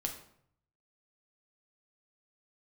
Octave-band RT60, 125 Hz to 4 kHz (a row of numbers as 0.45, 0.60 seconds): 1.0, 0.75, 0.70, 0.65, 0.55, 0.45 seconds